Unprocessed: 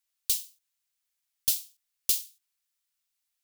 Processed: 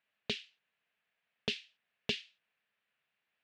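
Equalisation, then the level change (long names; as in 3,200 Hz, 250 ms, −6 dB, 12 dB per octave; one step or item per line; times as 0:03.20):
loudspeaker in its box 120–2,900 Hz, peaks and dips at 140 Hz +5 dB, 210 Hz +10 dB, 450 Hz +6 dB, 650 Hz +7 dB, 1,700 Hz +6 dB, 2,600 Hz +4 dB
+7.0 dB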